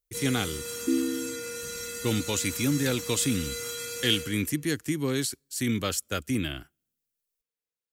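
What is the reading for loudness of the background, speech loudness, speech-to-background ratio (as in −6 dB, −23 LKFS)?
−34.5 LKFS, −29.0 LKFS, 5.5 dB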